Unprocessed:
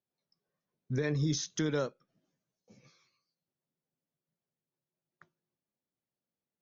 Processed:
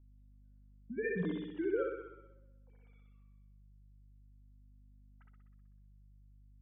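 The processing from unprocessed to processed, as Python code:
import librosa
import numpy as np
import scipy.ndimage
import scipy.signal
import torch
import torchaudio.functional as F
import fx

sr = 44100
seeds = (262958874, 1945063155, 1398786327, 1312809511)

y = fx.sine_speech(x, sr)
y = fx.air_absorb(y, sr, metres=170.0)
y = fx.room_flutter(y, sr, wall_m=10.8, rt60_s=1.0)
y = fx.add_hum(y, sr, base_hz=50, snr_db=21)
y = fx.comb_cascade(y, sr, direction='falling', hz=0.44)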